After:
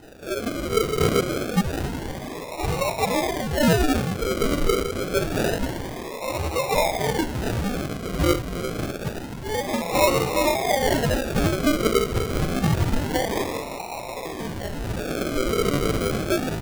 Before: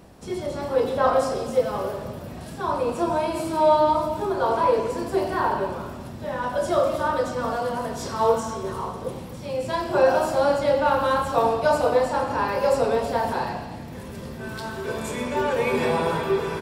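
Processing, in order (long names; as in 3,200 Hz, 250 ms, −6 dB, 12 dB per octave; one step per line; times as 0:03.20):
in parallel at −1 dB: downward compressor, threshold −30 dBFS, peak gain reduction 16 dB
on the sum: voice inversion scrambler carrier 2,700 Hz
low-shelf EQ 320 Hz +9.5 dB
sample-and-hold swept by an LFO 39×, swing 60% 0.27 Hz
level −2.5 dB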